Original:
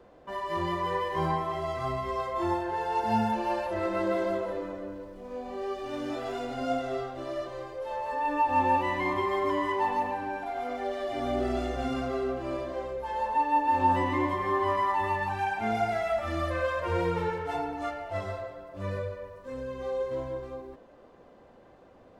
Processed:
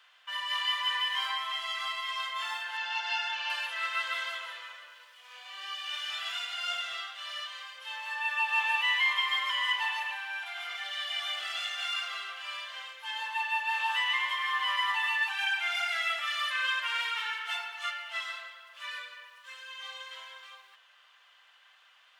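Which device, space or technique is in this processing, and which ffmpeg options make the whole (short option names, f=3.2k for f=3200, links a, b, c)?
headphones lying on a table: -filter_complex "[0:a]highpass=f=1.4k:w=0.5412,highpass=f=1.4k:w=1.3066,equalizer=f=3.1k:t=o:w=0.5:g=11.5,asettb=1/sr,asplit=3[a][b][c];[a]atrim=end=2.774[d];[b]atrim=start=2.77:end=3.5,asetpts=PTS-STARTPTS,afade=t=in:d=0.004:c=qsin,afade=t=out:st=0.726:d=0.004:c=qsin,lowpass=f=6.3k:w=0.5412,lowpass=f=6.3k:w=1.3066[e];[c]atrim=start=3.496[f];[d][e]acrossfade=d=0.004:c1=hsin:c2=qsin[g];[g][f]acrossfade=d=0.004:c1=qsin:c2=hsin,volume=6dB"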